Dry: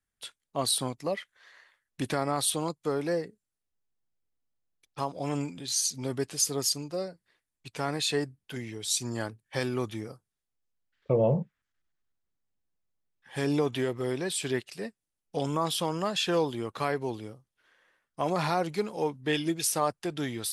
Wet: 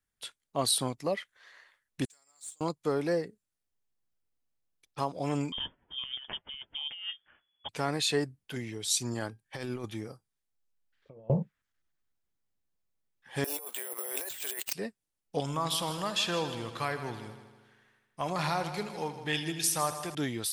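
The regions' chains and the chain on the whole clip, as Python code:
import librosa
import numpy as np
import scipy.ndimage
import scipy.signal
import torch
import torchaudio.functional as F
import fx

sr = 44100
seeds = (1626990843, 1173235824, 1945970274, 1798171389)

y = fx.chain(x, sr, fx.bandpass_q(hz=7400.0, q=15.0),
    fx.quant_float(bits=2), at=(2.05, 2.61))
y = fx.chain(y, sr, fx.peak_eq(hz=130.0, db=-6.5, octaves=0.34),
    fx.over_compress(threshold_db=-41.0, ratio=-1.0),
    fx.freq_invert(carrier_hz=3400), at=(5.52, 7.69))
y = fx.chain(y, sr, fx.over_compress(threshold_db=-32.0, ratio=-0.5),
    fx.comb_fb(f0_hz=800.0, decay_s=0.2, harmonics='all', damping=0.0, mix_pct=50), at=(9.14, 11.3))
y = fx.chain(y, sr, fx.highpass(hz=510.0, slope=24),
    fx.resample_bad(factor=4, down='none', up='zero_stuff'),
    fx.over_compress(threshold_db=-38.0, ratio=-1.0), at=(13.44, 14.73))
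y = fx.chain(y, sr, fx.peak_eq(hz=380.0, db=-8.5, octaves=1.8),
    fx.echo_heads(ms=79, heads='first and second', feedback_pct=54, wet_db=-14), at=(15.4, 20.15))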